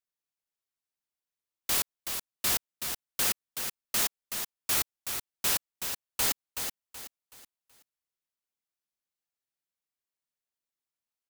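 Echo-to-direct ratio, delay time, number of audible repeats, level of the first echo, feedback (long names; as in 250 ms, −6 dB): −6.5 dB, 376 ms, 3, −7.0 dB, 34%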